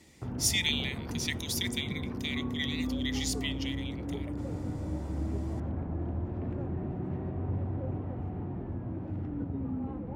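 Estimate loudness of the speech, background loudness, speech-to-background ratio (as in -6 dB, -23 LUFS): -33.0 LUFS, -36.0 LUFS, 3.0 dB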